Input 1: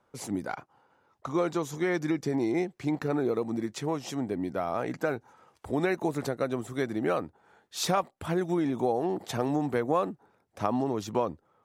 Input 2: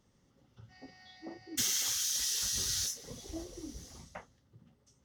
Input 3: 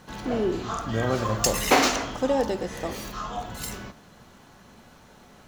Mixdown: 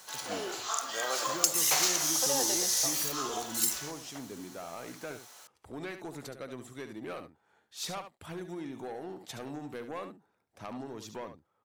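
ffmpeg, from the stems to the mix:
ffmpeg -i stem1.wav -i stem2.wav -i stem3.wav -filter_complex "[0:a]asoftclip=type=tanh:threshold=-21.5dB,acompressor=mode=upward:threshold=-47dB:ratio=2.5,adynamicequalizer=threshold=0.00447:dfrequency=1600:dqfactor=0.7:tfrequency=1600:tqfactor=0.7:attack=5:release=100:ratio=0.375:range=3.5:mode=boostabove:tftype=highshelf,volume=-11.5dB,asplit=3[link_01][link_02][link_03];[link_02]volume=-9.5dB[link_04];[1:a]volume=-0.5dB[link_05];[2:a]highpass=660,volume=-3dB[link_06];[link_03]apad=whole_len=222530[link_07];[link_05][link_07]sidechaincompress=threshold=-43dB:ratio=8:attack=16:release=841[link_08];[link_08][link_06]amix=inputs=2:normalize=0,bass=frequency=250:gain=-11,treble=frequency=4000:gain=15,acompressor=threshold=-24dB:ratio=5,volume=0dB[link_09];[link_04]aecho=0:1:71:1[link_10];[link_01][link_09][link_10]amix=inputs=3:normalize=0" out.wav

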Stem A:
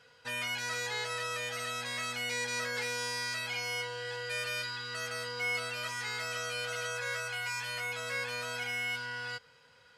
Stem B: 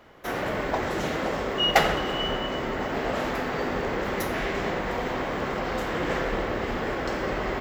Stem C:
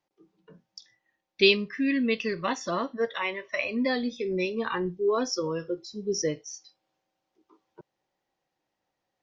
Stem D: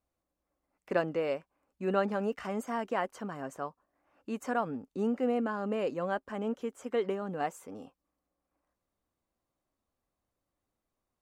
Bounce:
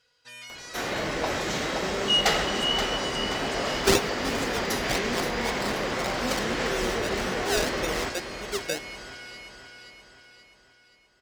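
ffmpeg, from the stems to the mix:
ffmpeg -i stem1.wav -i stem2.wav -i stem3.wav -i stem4.wav -filter_complex "[0:a]volume=-12.5dB,asplit=2[link_01][link_02];[link_02]volume=-3dB[link_03];[1:a]acompressor=mode=upward:threshold=-40dB:ratio=2.5,asoftclip=type=tanh:threshold=-16dB,adelay=500,volume=-2.5dB,asplit=2[link_04][link_05];[link_05]volume=-8.5dB[link_06];[2:a]afwtdn=0.0316,highpass=340,acrusher=samples=28:mix=1:aa=0.000001:lfo=1:lforange=28:lforate=1.8,adelay=2450,volume=-2.5dB[link_07];[3:a]alimiter=level_in=2dB:limit=-24dB:level=0:latency=1,volume=-2dB,volume=-2dB,asplit=2[link_08][link_09];[link_09]apad=whole_len=515064[link_10];[link_07][link_10]sidechaincompress=threshold=-39dB:ratio=8:attack=16:release=122[link_11];[link_03][link_06]amix=inputs=2:normalize=0,aecho=0:1:527|1054|1581|2108|2635|3162|3689:1|0.49|0.24|0.118|0.0576|0.0282|0.0138[link_12];[link_01][link_04][link_11][link_08][link_12]amix=inputs=5:normalize=0,equalizer=frequency=5500:width=0.59:gain=10.5" out.wav

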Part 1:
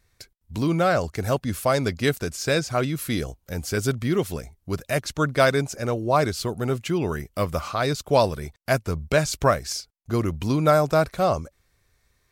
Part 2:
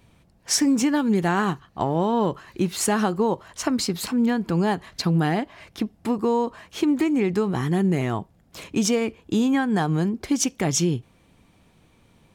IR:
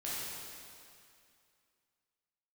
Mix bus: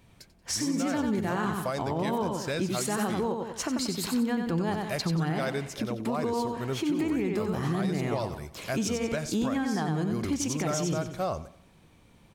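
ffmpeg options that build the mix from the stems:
-filter_complex "[0:a]volume=-7.5dB,asplit=3[link_01][link_02][link_03];[link_01]atrim=end=3.26,asetpts=PTS-STARTPTS,afade=type=out:start_time=3.256:duration=0.004:curve=hsin[link_04];[link_02]atrim=start=3.26:end=4.47,asetpts=PTS-STARTPTS,volume=0[link_05];[link_03]atrim=start=4.47,asetpts=PTS-STARTPTS,afade=type=in:duration=0.004:curve=hsin[link_06];[link_04][link_05][link_06]concat=n=3:v=0:a=1,asplit=2[link_07][link_08];[link_08]volume=-18.5dB[link_09];[1:a]volume=-2.5dB,asplit=2[link_10][link_11];[link_11]volume=-5dB[link_12];[link_09][link_12]amix=inputs=2:normalize=0,aecho=0:1:92|184|276|368|460:1|0.37|0.137|0.0507|0.0187[link_13];[link_07][link_10][link_13]amix=inputs=3:normalize=0,alimiter=limit=-20dB:level=0:latency=1:release=189"

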